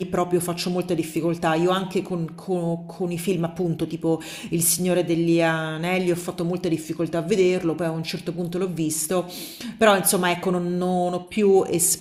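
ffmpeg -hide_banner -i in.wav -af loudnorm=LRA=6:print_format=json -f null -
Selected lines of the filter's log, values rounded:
"input_i" : "-22.4",
"input_tp" : "-4.1",
"input_lra" : "3.5",
"input_thresh" : "-32.6",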